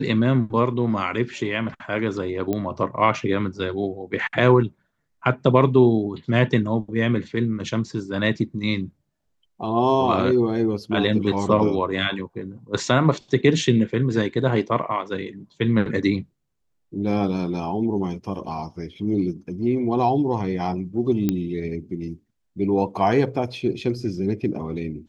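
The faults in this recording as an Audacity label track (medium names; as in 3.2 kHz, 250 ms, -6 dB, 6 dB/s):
2.530000	2.530000	pop -13 dBFS
21.290000	21.290000	pop -9 dBFS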